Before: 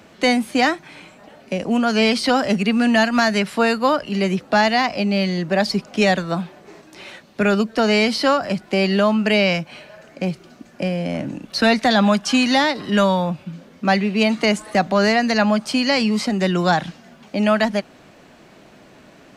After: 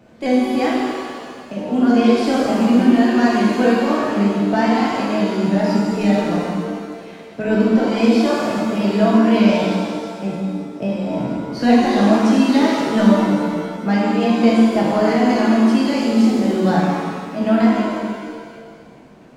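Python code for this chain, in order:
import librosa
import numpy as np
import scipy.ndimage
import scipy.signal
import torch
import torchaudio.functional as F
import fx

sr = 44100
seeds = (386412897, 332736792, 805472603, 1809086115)

y = fx.pitch_ramps(x, sr, semitones=1.5, every_ms=260)
y = fx.tilt_shelf(y, sr, db=6.5, hz=790.0)
y = fx.rev_shimmer(y, sr, seeds[0], rt60_s=1.8, semitones=7, shimmer_db=-8, drr_db=-5.0)
y = F.gain(torch.from_numpy(y), -6.5).numpy()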